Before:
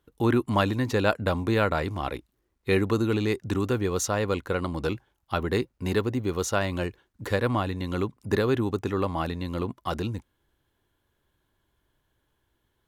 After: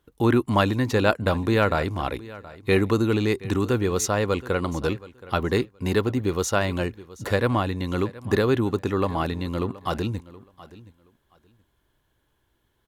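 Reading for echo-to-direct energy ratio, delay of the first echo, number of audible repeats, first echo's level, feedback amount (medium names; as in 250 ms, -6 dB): -19.0 dB, 723 ms, 2, -19.0 dB, 19%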